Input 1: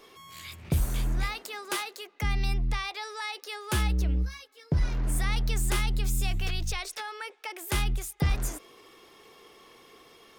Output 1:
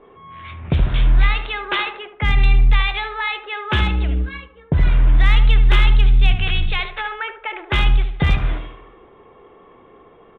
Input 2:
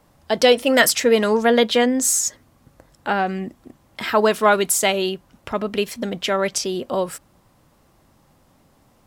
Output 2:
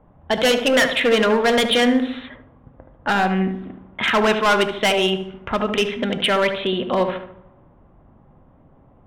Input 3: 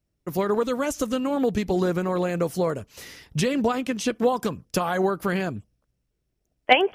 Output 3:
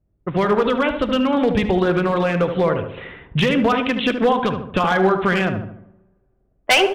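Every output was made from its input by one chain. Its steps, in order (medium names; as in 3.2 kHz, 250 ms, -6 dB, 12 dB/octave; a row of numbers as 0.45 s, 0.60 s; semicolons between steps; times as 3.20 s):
bass shelf 170 Hz +7.5 dB; resampled via 8 kHz; tilt shelf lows -5.5 dB, about 860 Hz; in parallel at -3 dB: compression 5:1, threshold -30 dBFS; on the sum: hard clipper -15 dBFS; on a send: filtered feedback delay 74 ms, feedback 51%, low-pass 1.5 kHz, level -6.5 dB; on the sum: two-slope reverb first 0.57 s, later 2.3 s, from -19 dB, DRR 15.5 dB; level-controlled noise filter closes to 690 Hz, open at -19.5 dBFS; normalise loudness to -19 LUFS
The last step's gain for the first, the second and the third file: +6.0 dB, +1.5 dB, +4.5 dB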